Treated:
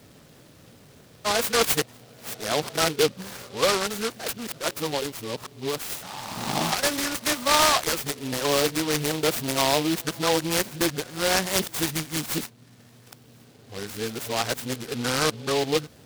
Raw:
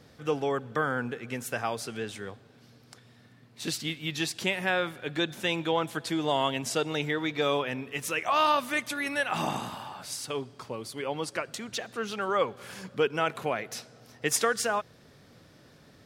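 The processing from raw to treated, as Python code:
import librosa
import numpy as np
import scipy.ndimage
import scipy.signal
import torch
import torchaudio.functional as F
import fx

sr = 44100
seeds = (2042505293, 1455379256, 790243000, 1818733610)

y = np.flip(x).copy()
y = fx.noise_mod_delay(y, sr, seeds[0], noise_hz=3200.0, depth_ms=0.12)
y = y * 10.0 ** (4.5 / 20.0)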